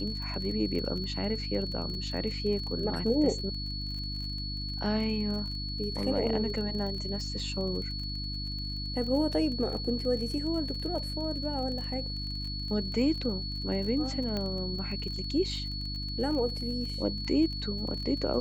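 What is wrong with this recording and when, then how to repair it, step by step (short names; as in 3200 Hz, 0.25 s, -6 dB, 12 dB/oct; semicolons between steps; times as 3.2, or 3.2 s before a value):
crackle 32/s -37 dBFS
hum 50 Hz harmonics 6 -37 dBFS
tone 4400 Hz -37 dBFS
14.37 pop -20 dBFS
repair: de-click; notch 4400 Hz, Q 30; de-hum 50 Hz, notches 6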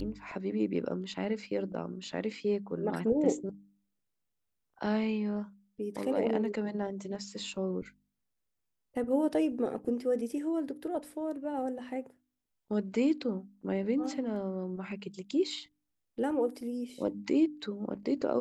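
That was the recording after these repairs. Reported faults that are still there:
14.37 pop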